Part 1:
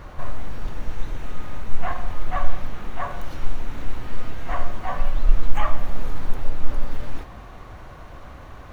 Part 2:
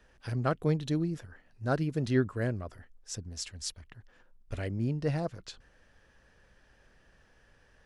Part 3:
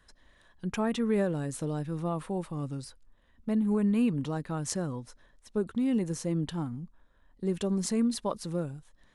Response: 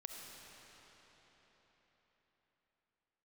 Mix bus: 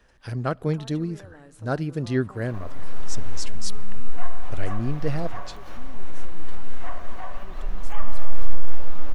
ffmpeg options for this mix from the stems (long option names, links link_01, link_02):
-filter_complex "[0:a]adelay=2350,volume=-4dB,asplit=2[link_01][link_02];[link_02]volume=-4.5dB[link_03];[1:a]volume=2.5dB,asplit=2[link_04][link_05];[link_05]volume=-20dB[link_06];[2:a]equalizer=frequency=1000:width_type=o:width=2.2:gain=8.5,alimiter=limit=-23dB:level=0:latency=1:release=190,volume=-13.5dB,asplit=2[link_07][link_08];[link_08]apad=whole_len=492963[link_09];[link_01][link_09]sidechaincompress=threshold=-51dB:ratio=8:attack=16:release=129[link_10];[link_10][link_07]amix=inputs=2:normalize=0,highpass=190,acompressor=threshold=-43dB:ratio=6,volume=0dB[link_11];[3:a]atrim=start_sample=2205[link_12];[link_03][link_06]amix=inputs=2:normalize=0[link_13];[link_13][link_12]afir=irnorm=-1:irlink=0[link_14];[link_04][link_11][link_14]amix=inputs=3:normalize=0"